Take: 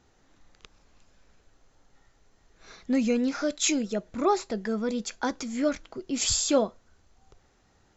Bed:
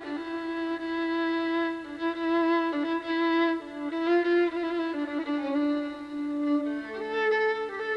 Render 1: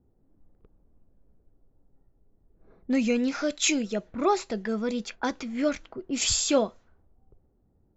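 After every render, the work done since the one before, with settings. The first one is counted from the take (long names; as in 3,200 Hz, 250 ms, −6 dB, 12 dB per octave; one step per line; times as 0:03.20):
low-pass that shuts in the quiet parts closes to 350 Hz, open at −25 dBFS
dynamic equaliser 2,600 Hz, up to +5 dB, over −48 dBFS, Q 1.8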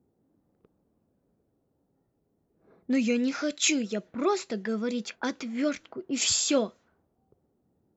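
high-pass filter 140 Hz 12 dB per octave
dynamic equaliser 820 Hz, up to −7 dB, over −40 dBFS, Q 1.5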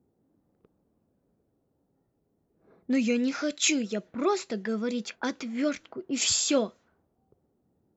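no processing that can be heard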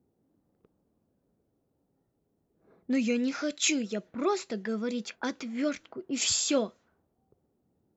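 level −2 dB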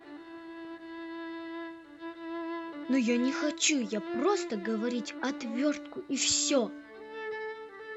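mix in bed −12.5 dB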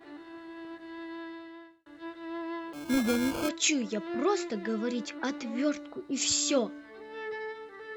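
0:01.14–0:01.86: fade out
0:02.73–0:03.49: sample-rate reduction 1,900 Hz
0:05.72–0:06.31: parametric band 2,300 Hz −3.5 dB 1.6 octaves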